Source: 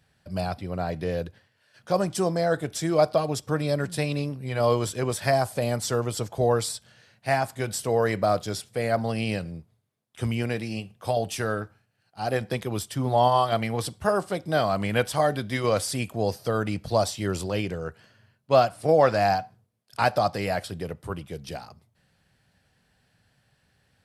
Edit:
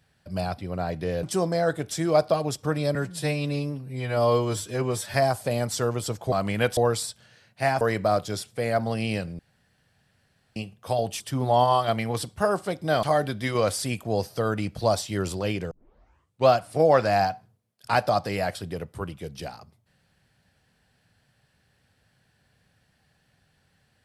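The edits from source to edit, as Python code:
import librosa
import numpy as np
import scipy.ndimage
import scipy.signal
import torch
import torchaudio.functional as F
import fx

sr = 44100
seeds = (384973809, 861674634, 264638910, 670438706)

y = fx.edit(x, sr, fx.cut(start_s=1.23, length_s=0.84),
    fx.stretch_span(start_s=3.79, length_s=1.46, factor=1.5),
    fx.cut(start_s=7.47, length_s=0.52),
    fx.room_tone_fill(start_s=9.57, length_s=1.17),
    fx.cut(start_s=11.38, length_s=1.46),
    fx.move(start_s=14.67, length_s=0.45, to_s=6.43),
    fx.tape_start(start_s=17.8, length_s=0.77), tone=tone)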